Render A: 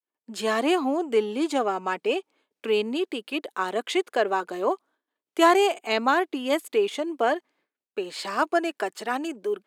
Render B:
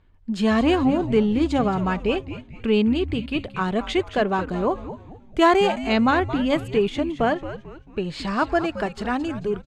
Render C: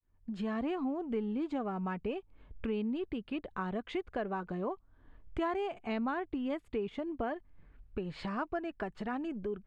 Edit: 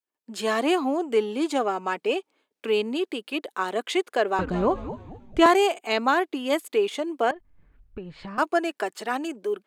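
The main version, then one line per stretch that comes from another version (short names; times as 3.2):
A
4.39–5.46 from B
7.31–8.38 from C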